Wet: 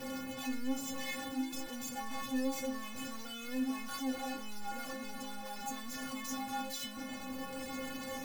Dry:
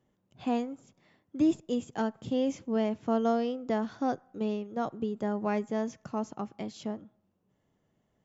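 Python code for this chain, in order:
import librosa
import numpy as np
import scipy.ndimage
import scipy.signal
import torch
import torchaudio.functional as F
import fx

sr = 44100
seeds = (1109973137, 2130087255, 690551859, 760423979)

y = np.sign(x) * np.sqrt(np.mean(np.square(x)))
y = fx.stiff_resonator(y, sr, f0_hz=260.0, decay_s=0.44, stiffness=0.008)
y = F.gain(torch.from_numpy(y), 7.5).numpy()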